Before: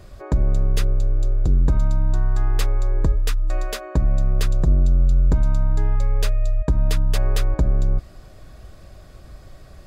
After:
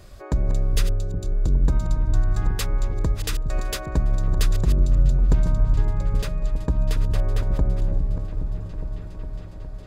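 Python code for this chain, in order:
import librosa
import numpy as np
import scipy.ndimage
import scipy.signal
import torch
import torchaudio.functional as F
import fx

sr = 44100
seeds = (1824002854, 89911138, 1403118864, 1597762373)

y = fx.reverse_delay(x, sr, ms=415, wet_db=-10.5)
y = fx.high_shelf(y, sr, hz=2300.0, db=fx.steps((0.0, 5.5), (5.5, -3.5), (7.01, -9.5)))
y = fx.echo_opening(y, sr, ms=411, hz=200, octaves=1, feedback_pct=70, wet_db=-6)
y = y * 10.0 ** (-3.0 / 20.0)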